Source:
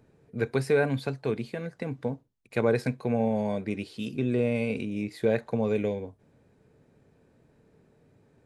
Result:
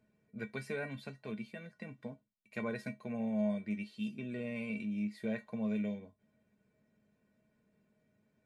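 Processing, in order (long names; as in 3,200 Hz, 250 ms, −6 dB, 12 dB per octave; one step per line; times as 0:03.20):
parametric band 2,300 Hz +6 dB 0.97 octaves
tuned comb filter 210 Hz, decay 0.15 s, harmonics odd, mix 90%
level −1 dB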